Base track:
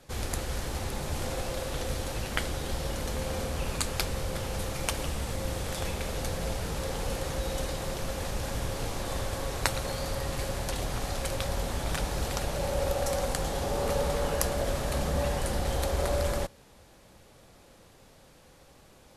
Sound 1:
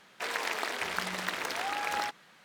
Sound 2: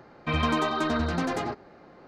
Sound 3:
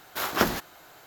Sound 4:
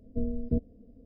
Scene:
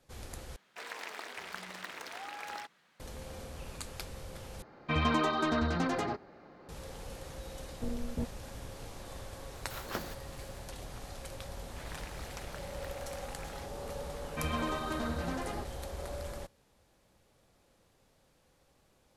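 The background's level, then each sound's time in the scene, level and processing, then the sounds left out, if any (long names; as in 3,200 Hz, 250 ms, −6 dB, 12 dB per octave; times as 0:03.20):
base track −12.5 dB
0:00.56: overwrite with 1 −10 dB
0:04.62: overwrite with 2 −3.5 dB
0:07.66: mix in 4 −12 dB + leveller curve on the samples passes 2
0:09.54: mix in 3 −15.5 dB
0:11.56: mix in 1 −17 dB
0:14.10: mix in 2 −9.5 dB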